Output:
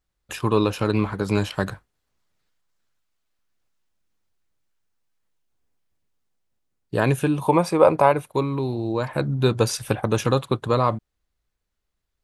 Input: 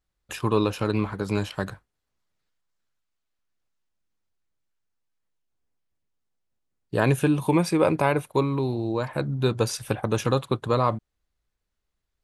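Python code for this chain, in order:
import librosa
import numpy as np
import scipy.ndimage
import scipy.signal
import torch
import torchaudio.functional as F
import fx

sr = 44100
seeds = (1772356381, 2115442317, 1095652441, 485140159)

y = fx.band_shelf(x, sr, hz=770.0, db=8.5, octaves=1.7, at=(7.41, 8.12))
y = fx.rider(y, sr, range_db=10, speed_s=2.0)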